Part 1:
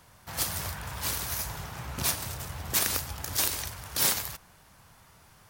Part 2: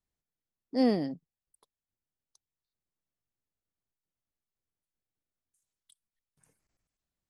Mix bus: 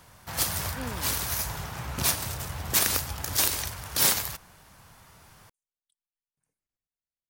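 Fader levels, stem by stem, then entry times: +3.0, −14.0 decibels; 0.00, 0.00 seconds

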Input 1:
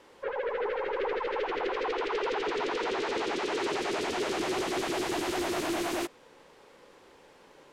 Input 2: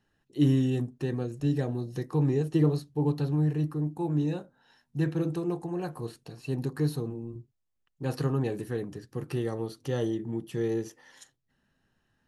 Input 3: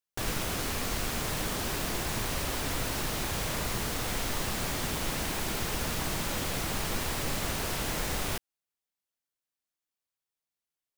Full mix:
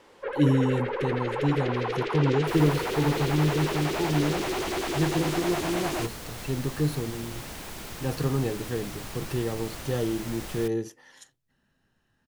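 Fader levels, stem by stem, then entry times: +1.0, +1.5, −7.0 decibels; 0.00, 0.00, 2.30 seconds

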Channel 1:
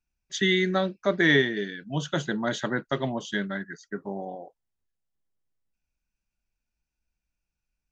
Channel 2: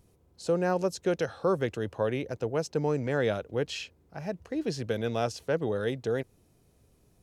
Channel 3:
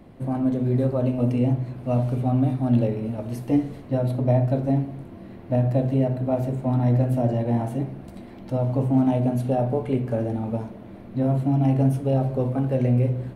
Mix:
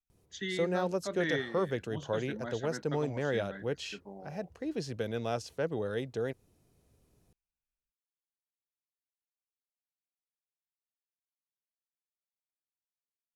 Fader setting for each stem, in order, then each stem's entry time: −13.5 dB, −4.5 dB, muted; 0.00 s, 0.10 s, muted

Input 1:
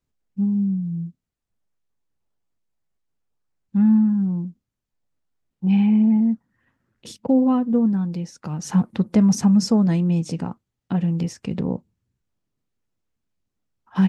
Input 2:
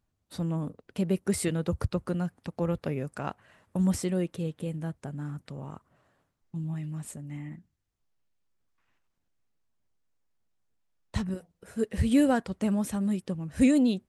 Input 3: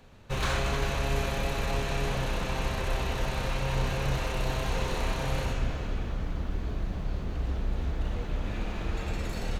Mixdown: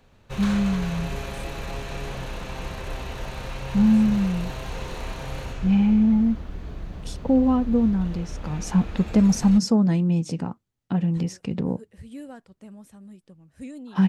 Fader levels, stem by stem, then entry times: −1.5, −17.0, −3.0 decibels; 0.00, 0.00, 0.00 seconds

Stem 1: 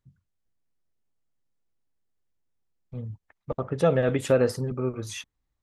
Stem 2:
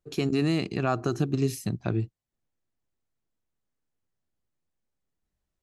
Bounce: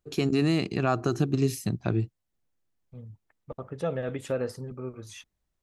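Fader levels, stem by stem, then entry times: −8.5, +1.0 decibels; 0.00, 0.00 seconds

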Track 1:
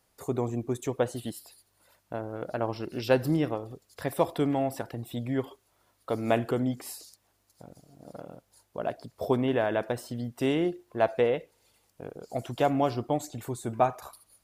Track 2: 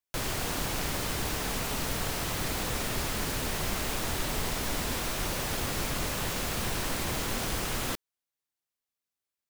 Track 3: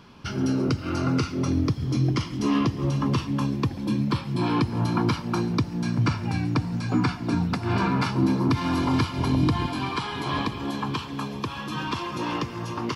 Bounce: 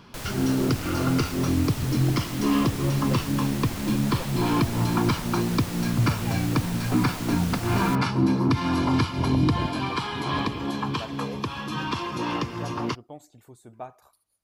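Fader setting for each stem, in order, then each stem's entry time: −14.5, −4.0, +0.5 decibels; 0.00, 0.00, 0.00 seconds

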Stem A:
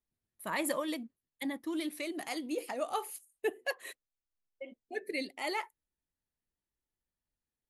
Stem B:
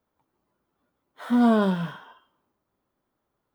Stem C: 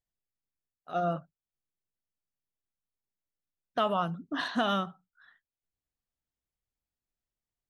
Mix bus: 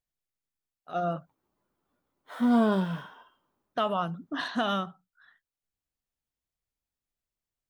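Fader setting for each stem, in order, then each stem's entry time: muted, −3.5 dB, 0.0 dB; muted, 1.10 s, 0.00 s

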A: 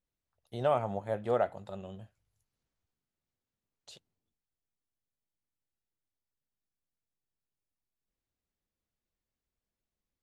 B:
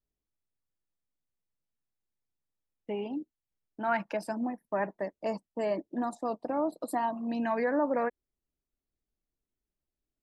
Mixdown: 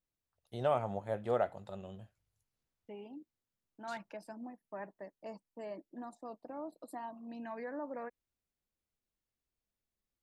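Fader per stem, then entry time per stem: −3.0, −13.5 decibels; 0.00, 0.00 seconds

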